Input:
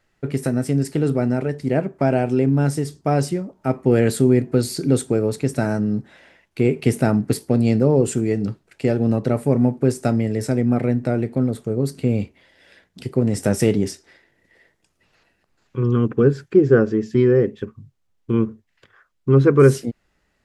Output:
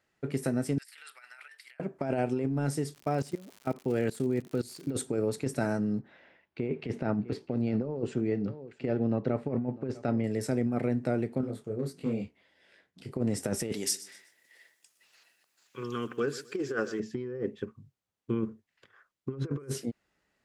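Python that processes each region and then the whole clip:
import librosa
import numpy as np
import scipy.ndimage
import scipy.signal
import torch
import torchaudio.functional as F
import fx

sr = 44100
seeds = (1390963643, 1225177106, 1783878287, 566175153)

y = fx.chain(x, sr, fx.highpass(hz=1500.0, slope=24),
    fx.peak_eq(hz=6500.0, db=-11.0, octaves=0.53),
    fx.over_compress(threshold_db=-44.0, ratio=-0.5), at=(0.78, 1.8))
y = fx.level_steps(y, sr, step_db=20, at=(2.93, 4.9), fade=0.02)
y = fx.dmg_crackle(y, sr, seeds[0], per_s=130.0, level_db=-32.0, at=(2.93, 4.9), fade=0.02)
y = fx.chain(y, sr, fx.air_absorb(metres=210.0),
    fx.echo_single(ms=650, db=-21.0), at=(5.99, 10.24))
y = fx.chain(y, sr, fx.high_shelf(hz=5800.0, db=-4.0),
    fx.clip_hard(threshold_db=-11.0),
    fx.detune_double(cents=52), at=(11.41, 13.11))
y = fx.chain(y, sr, fx.tilt_eq(slope=4.5),
    fx.echo_feedback(ms=125, feedback_pct=32, wet_db=-18), at=(13.72, 17.0))
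y = fx.highpass(y, sr, hz=150.0, slope=6)
y = fx.over_compress(y, sr, threshold_db=-20.0, ratio=-0.5)
y = y * librosa.db_to_amplitude(-8.5)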